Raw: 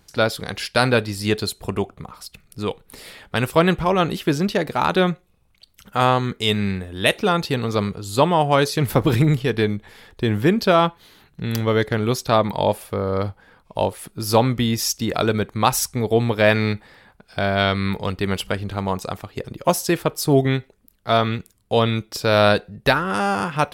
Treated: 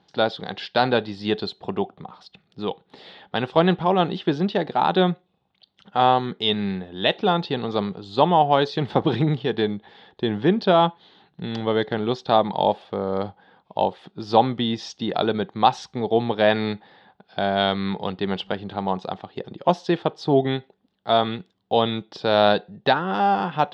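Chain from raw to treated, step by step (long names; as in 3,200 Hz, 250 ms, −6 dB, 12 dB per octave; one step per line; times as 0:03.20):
loudspeaker in its box 160–4,100 Hz, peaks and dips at 180 Hz +5 dB, 370 Hz +3 dB, 790 Hz +9 dB, 1,300 Hz −3 dB, 2,300 Hz −7 dB, 3,500 Hz +6 dB
level −3.5 dB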